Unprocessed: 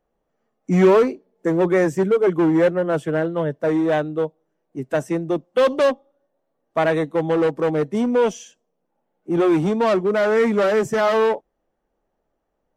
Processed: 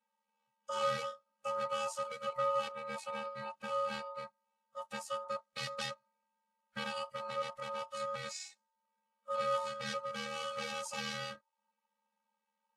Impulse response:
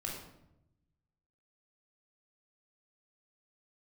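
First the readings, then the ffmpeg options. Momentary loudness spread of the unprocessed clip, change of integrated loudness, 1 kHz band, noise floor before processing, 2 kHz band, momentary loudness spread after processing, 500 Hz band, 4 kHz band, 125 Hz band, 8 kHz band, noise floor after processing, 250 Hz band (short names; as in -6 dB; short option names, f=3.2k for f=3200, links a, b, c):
8 LU, -19.0 dB, -11.5 dB, -75 dBFS, -15.5 dB, 11 LU, -22.0 dB, -5.5 dB, -27.0 dB, n/a, under -85 dBFS, -32.5 dB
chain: -filter_complex "[0:a]equalizer=f=125:t=o:w=1:g=5,equalizer=f=500:t=o:w=1:g=-9,equalizer=f=2k:t=o:w=1:g=8,equalizer=f=4k:t=o:w=1:g=6,equalizer=f=8k:t=o:w=1:g=5,acrossover=split=330|3000[a][b][c];[b]acompressor=threshold=-42dB:ratio=2[d];[a][d][c]amix=inputs=3:normalize=0,afftfilt=real='hypot(re,im)*cos(PI*b)':imag='0':win_size=512:overlap=0.75,aeval=exprs='val(0)*sin(2*PI*900*n/s)':c=same,volume=-5dB" -ar 32000 -c:a libvorbis -b:a 48k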